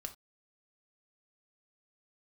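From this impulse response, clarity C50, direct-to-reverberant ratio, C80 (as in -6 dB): 14.0 dB, 5.0 dB, 22.0 dB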